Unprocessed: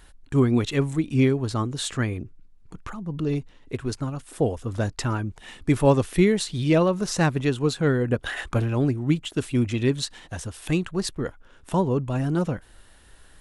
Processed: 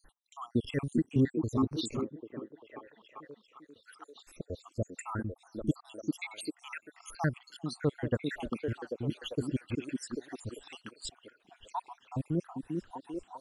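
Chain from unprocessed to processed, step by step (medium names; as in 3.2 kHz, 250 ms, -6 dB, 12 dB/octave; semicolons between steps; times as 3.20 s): random holes in the spectrogram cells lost 78%; 2.01–3.86 s: vowel filter e; repeats whose band climbs or falls 395 ms, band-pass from 260 Hz, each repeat 0.7 oct, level -1 dB; trim -6 dB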